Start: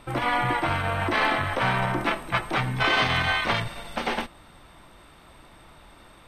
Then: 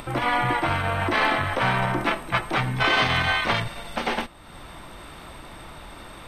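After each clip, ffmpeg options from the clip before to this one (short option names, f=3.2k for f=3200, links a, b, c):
-af "acompressor=mode=upward:threshold=-33dB:ratio=2.5,volume=1.5dB"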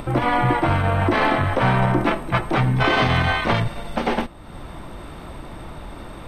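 -af "tiltshelf=f=930:g=5.5,volume=3dB"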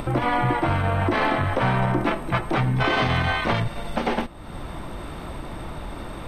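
-af "acompressor=threshold=-29dB:ratio=1.5,volume=2dB"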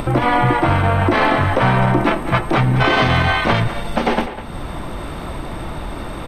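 -filter_complex "[0:a]asplit=2[a][b];[b]adelay=200,highpass=300,lowpass=3.4k,asoftclip=type=hard:threshold=-17dB,volume=-11dB[c];[a][c]amix=inputs=2:normalize=0,volume=6.5dB"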